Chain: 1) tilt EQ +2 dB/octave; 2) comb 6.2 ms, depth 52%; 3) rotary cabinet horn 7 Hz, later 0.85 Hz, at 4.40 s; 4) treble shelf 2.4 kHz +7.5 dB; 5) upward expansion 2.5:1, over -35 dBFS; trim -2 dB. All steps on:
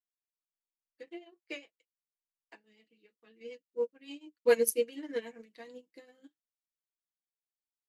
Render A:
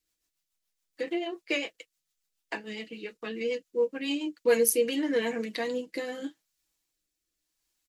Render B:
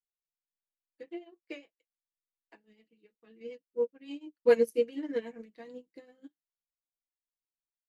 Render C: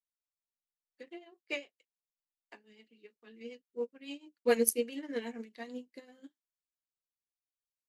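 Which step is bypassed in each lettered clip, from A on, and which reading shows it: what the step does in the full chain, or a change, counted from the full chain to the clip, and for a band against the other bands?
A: 5, 250 Hz band +6.0 dB; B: 1, 250 Hz band +5.5 dB; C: 2, 500 Hz band -4.5 dB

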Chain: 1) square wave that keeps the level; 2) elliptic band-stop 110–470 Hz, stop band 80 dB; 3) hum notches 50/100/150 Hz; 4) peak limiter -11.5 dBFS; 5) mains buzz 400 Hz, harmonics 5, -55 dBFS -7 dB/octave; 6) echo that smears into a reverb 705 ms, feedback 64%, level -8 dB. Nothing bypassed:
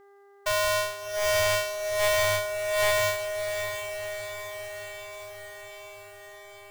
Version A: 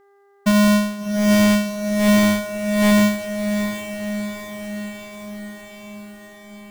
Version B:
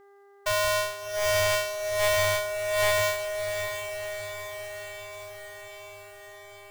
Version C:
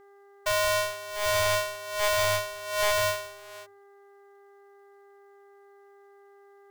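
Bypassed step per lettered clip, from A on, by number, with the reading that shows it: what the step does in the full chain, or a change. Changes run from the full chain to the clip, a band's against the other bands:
2, 125 Hz band +13.5 dB; 3, 125 Hz band +2.0 dB; 6, echo-to-direct -5.5 dB to none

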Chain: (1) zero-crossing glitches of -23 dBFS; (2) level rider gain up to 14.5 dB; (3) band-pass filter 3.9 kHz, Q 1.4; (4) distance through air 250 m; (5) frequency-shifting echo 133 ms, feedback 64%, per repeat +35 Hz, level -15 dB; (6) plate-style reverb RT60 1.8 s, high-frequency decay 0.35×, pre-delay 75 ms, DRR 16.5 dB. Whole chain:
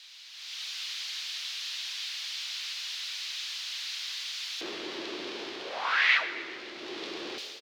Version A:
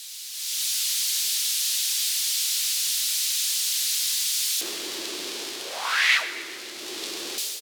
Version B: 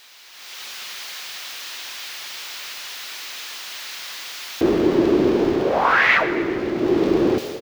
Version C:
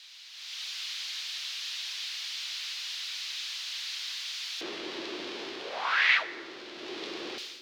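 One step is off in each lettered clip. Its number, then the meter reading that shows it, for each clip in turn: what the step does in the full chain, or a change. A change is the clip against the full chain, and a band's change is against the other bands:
4, 8 kHz band +18.5 dB; 3, 250 Hz band +17.0 dB; 5, echo-to-direct -11.0 dB to -16.5 dB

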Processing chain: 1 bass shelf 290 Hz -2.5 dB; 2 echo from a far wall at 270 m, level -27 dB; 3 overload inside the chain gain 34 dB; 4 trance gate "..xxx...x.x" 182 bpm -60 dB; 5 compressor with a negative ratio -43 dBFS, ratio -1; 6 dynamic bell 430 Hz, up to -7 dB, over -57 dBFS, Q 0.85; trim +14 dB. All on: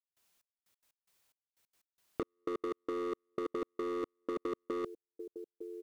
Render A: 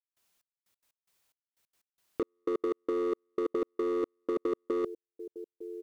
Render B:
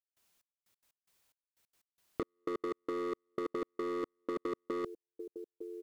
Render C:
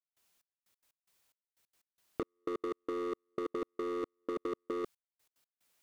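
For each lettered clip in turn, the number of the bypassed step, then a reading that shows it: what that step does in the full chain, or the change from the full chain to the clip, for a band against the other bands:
6, 500 Hz band +5.5 dB; 1, 2 kHz band +1.5 dB; 2, momentary loudness spread change -5 LU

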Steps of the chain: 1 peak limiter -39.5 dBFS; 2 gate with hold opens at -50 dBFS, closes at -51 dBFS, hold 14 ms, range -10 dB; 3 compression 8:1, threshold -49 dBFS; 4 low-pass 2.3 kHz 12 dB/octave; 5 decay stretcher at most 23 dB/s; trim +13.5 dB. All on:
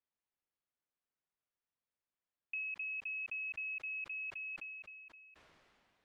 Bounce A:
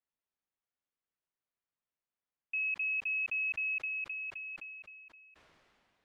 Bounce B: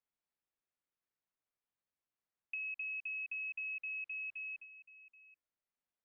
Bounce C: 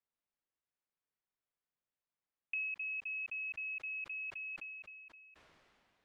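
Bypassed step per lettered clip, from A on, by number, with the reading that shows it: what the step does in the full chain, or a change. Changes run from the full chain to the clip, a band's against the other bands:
3, mean gain reduction 4.0 dB; 5, momentary loudness spread change +4 LU; 1, mean gain reduction 2.5 dB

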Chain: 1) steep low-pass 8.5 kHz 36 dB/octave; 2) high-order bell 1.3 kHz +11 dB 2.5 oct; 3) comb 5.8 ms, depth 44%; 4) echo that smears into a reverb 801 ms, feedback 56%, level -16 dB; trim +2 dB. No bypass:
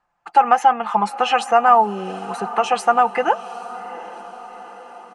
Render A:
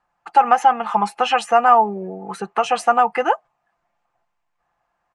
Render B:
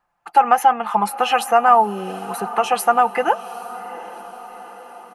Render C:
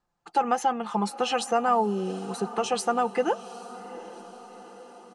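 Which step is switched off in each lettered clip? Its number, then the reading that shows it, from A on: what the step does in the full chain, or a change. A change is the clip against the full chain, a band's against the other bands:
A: 4, echo-to-direct -14.5 dB to none; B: 1, 8 kHz band +5.0 dB; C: 2, 1 kHz band -6.0 dB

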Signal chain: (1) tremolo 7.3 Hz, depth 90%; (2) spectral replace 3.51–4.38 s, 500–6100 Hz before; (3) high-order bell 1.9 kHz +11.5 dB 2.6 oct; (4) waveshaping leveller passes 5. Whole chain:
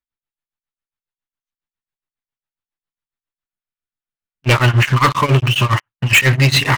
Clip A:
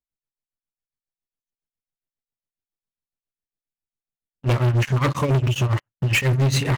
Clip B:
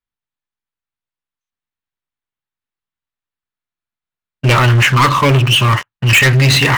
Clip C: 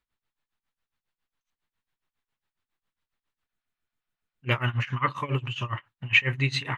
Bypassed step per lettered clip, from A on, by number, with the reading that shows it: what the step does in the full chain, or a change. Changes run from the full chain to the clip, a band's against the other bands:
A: 3, 2 kHz band -5.5 dB; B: 1, crest factor change -2.5 dB; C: 4, crest factor change +13.5 dB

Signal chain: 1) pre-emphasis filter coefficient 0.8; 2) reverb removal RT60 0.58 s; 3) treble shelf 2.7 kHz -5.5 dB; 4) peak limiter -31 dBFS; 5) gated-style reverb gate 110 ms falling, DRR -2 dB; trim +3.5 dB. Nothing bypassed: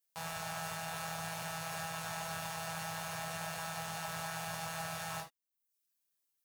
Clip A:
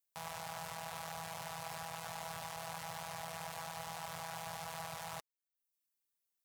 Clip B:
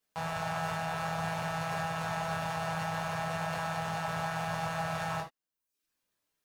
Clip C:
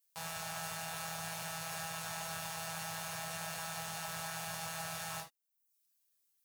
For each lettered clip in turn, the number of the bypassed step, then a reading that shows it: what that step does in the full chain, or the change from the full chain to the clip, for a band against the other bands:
5, 1 kHz band +3.0 dB; 1, 8 kHz band -12.0 dB; 3, 8 kHz band +4.5 dB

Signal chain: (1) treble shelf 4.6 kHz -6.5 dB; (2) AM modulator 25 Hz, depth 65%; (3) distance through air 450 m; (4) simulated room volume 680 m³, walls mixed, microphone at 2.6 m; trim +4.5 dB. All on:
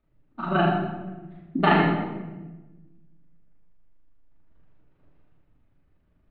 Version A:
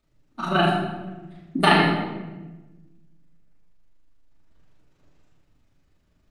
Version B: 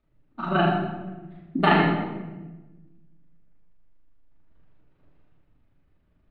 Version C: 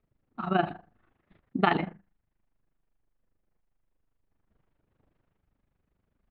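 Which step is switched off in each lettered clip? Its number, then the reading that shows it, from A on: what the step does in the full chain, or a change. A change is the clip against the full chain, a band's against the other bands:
3, 4 kHz band +7.5 dB; 1, 4 kHz band +2.0 dB; 4, echo-to-direct 5.0 dB to none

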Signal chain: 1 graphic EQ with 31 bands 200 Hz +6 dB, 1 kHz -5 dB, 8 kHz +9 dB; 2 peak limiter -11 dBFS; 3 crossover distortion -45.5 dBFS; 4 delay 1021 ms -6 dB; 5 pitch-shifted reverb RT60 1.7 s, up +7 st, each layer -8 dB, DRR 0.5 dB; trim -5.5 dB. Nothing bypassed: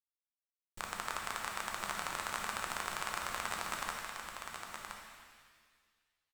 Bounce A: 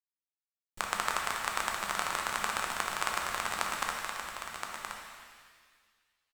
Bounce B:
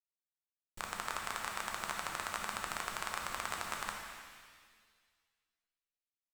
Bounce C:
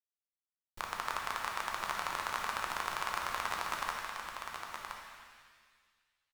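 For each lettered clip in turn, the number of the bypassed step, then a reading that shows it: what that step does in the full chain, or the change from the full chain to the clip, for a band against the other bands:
2, mean gain reduction 2.0 dB; 4, momentary loudness spread change -1 LU; 1, 8 kHz band -4.0 dB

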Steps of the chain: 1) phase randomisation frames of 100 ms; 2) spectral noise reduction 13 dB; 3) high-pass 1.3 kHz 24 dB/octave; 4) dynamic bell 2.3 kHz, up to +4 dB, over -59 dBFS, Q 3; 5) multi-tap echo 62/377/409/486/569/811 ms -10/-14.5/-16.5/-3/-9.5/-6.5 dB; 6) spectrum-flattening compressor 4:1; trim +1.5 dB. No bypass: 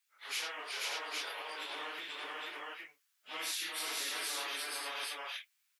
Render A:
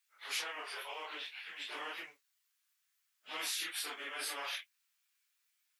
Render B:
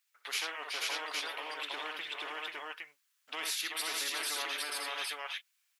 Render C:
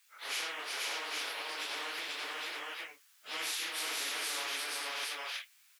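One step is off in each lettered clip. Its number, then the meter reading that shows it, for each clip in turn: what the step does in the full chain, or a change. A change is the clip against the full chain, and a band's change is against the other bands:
5, loudness change -1.5 LU; 1, loudness change +2.5 LU; 2, momentary loudness spread change -1 LU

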